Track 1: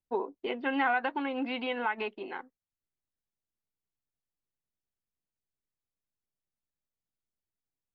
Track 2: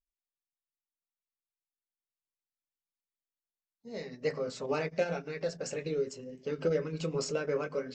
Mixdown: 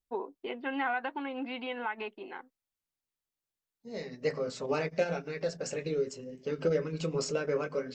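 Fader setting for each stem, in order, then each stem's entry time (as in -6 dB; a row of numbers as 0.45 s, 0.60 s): -4.0 dB, +1.0 dB; 0.00 s, 0.00 s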